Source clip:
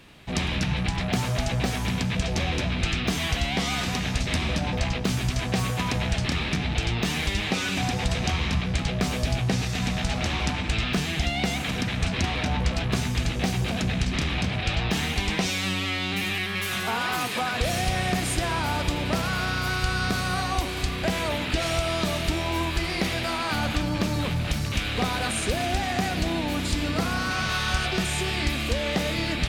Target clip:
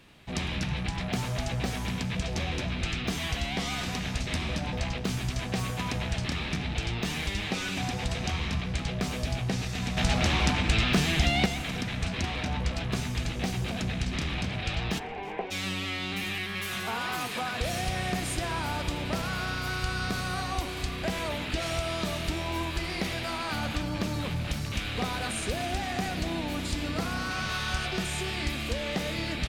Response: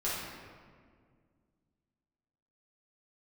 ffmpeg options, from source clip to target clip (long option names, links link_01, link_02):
-filter_complex "[0:a]asettb=1/sr,asplit=3[link_01][link_02][link_03];[link_01]atrim=end=9.974[link_04];[link_02]atrim=start=9.97:end=11.46,asetpts=PTS-STARTPTS,afade=type=in:duration=0.004:curve=qsin,afade=type=out:start_time=1.486:duration=0.004:curve=qsin,acontrast=75[link_05];[link_03]atrim=start=11.456[link_06];[link_04][link_05]acrossfade=duration=0.004:curve1=hsin:curve2=qsin[link_07];[link_07][link_06]acrossfade=duration=0.004:curve1=qsin:curve2=hsin,asplit=3[link_08][link_09][link_10];[link_08]afade=type=out:start_time=14.98:duration=0.02[link_11];[link_09]highpass=410,equalizer=frequency=420:width_type=q:width=4:gain=9,equalizer=frequency=800:width_type=q:width=4:gain=7,equalizer=frequency=1300:width_type=q:width=4:gain=-9,equalizer=frequency=1900:width_type=q:width=4:gain=-6,lowpass=frequency=2100:width=0.5412,lowpass=frequency=2100:width=1.3066,afade=type=in:start_time=14.98:duration=0.02,afade=type=out:start_time=15.5:duration=0.02[link_12];[link_10]afade=type=in:start_time=15.5:duration=0.02[link_13];[link_11][link_12][link_13]amix=inputs=3:normalize=0,asplit=5[link_14][link_15][link_16][link_17][link_18];[link_15]adelay=321,afreqshift=-43,volume=-21dB[link_19];[link_16]adelay=642,afreqshift=-86,volume=-26.5dB[link_20];[link_17]adelay=963,afreqshift=-129,volume=-32dB[link_21];[link_18]adelay=1284,afreqshift=-172,volume=-37.5dB[link_22];[link_14][link_19][link_20][link_21][link_22]amix=inputs=5:normalize=0,asplit=2[link_23][link_24];[1:a]atrim=start_sample=2205[link_25];[link_24][link_25]afir=irnorm=-1:irlink=0,volume=-25.5dB[link_26];[link_23][link_26]amix=inputs=2:normalize=0,volume=-5.5dB"